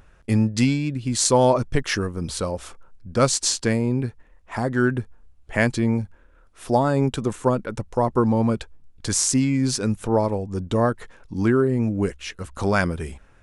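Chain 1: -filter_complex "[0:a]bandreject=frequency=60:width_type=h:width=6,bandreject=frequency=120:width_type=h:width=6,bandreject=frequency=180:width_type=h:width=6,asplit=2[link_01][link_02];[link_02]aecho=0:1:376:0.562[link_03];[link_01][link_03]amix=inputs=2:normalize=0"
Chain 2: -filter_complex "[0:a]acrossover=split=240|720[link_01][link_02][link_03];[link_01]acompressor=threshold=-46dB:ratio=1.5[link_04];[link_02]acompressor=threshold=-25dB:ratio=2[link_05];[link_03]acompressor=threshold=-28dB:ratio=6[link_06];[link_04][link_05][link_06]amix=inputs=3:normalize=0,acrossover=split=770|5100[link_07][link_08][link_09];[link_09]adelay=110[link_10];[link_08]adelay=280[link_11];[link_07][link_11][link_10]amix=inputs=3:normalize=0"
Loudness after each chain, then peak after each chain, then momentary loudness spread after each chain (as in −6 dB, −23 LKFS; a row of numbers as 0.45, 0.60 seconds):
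−22.0, −28.5 LKFS; −2.0, −11.0 dBFS; 8, 11 LU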